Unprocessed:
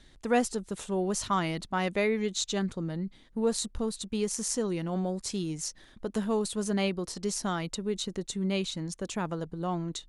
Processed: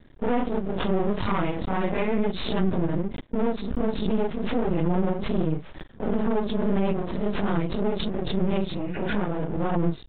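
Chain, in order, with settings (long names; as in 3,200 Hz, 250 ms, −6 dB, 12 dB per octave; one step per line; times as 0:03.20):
random phases in long frames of 100 ms
noise gate −45 dBFS, range −40 dB
high-pass filter 270 Hz 6 dB per octave
spectral tilt −4.5 dB per octave
brickwall limiter −19.5 dBFS, peak gain reduction 9.5 dB
half-wave rectification
downsampling to 8,000 Hz
healed spectral selection 0:08.74–0:09.12, 1,400–3,000 Hz both
background raised ahead of every attack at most 41 dB per second
level +6.5 dB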